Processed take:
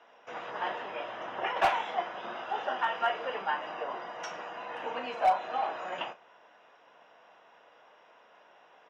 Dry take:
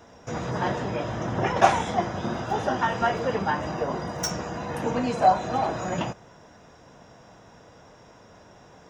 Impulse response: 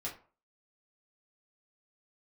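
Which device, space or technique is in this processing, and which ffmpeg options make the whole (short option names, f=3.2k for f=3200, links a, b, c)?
megaphone: -filter_complex "[0:a]highpass=660,lowpass=2.5k,equalizer=f=2.9k:t=o:w=0.46:g=9,asoftclip=type=hard:threshold=-14.5dB,asplit=2[a][b];[b]adelay=36,volume=-12.5dB[c];[a][c]amix=inputs=2:normalize=0,volume=-4dB"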